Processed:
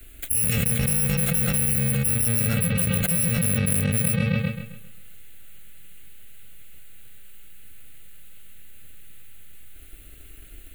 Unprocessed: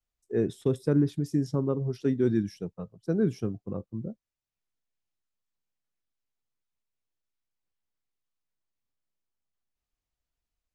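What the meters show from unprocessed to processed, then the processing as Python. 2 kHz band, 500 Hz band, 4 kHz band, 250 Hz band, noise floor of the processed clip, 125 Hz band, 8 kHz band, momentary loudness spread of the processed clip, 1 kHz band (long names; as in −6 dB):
+18.5 dB, −4.0 dB, +17.0 dB, +1.0 dB, −44 dBFS, +8.0 dB, can't be measured, 4 LU, +8.0 dB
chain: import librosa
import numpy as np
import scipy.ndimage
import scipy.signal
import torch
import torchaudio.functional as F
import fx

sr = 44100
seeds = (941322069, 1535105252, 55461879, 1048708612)

p1 = fx.bit_reversed(x, sr, seeds[0], block=128)
p2 = fx.fixed_phaser(p1, sr, hz=2300.0, stages=4)
p3 = fx.fold_sine(p2, sr, drive_db=7, ceiling_db=-13.0)
p4 = p2 + (p3 * 10.0 ** (-4.5 / 20.0))
p5 = fx.echo_bbd(p4, sr, ms=133, stages=4096, feedback_pct=37, wet_db=-10.5)
p6 = fx.env_flatten(p5, sr, amount_pct=100)
y = p6 * 10.0 ** (-6.5 / 20.0)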